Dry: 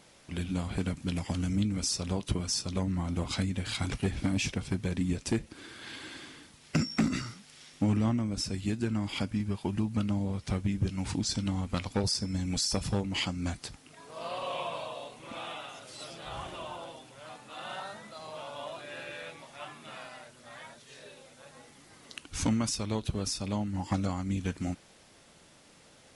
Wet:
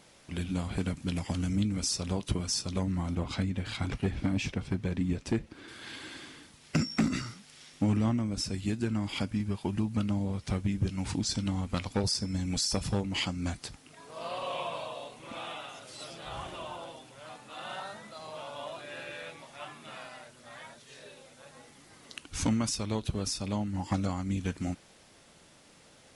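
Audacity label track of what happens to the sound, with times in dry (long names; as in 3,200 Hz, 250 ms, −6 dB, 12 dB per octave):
3.150000	5.680000	low-pass filter 2,900 Hz 6 dB per octave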